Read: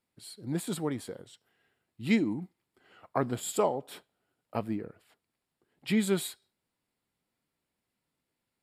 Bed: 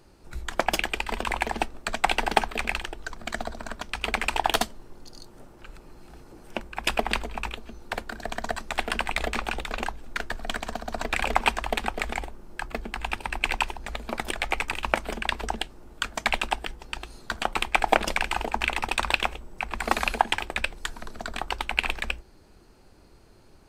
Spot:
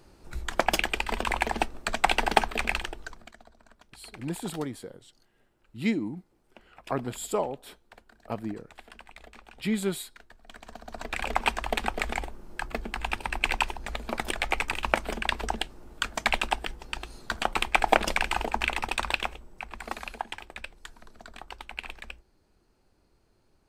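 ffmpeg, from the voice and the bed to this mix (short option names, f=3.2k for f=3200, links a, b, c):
-filter_complex "[0:a]adelay=3750,volume=-1dB[a];[1:a]volume=21dB,afade=t=out:st=2.83:d=0.5:silence=0.0841395,afade=t=in:st=10.44:d=1.45:silence=0.0891251,afade=t=out:st=18.41:d=1.58:silence=0.251189[b];[a][b]amix=inputs=2:normalize=0"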